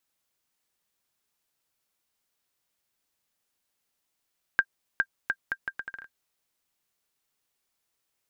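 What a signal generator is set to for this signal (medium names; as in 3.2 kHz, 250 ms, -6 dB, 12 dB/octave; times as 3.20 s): bouncing ball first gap 0.41 s, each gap 0.73, 1.59 kHz, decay 59 ms -9.5 dBFS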